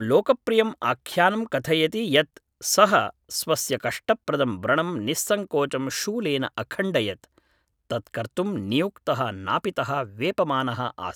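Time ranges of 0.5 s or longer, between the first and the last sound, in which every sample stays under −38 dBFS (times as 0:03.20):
0:07.24–0:07.91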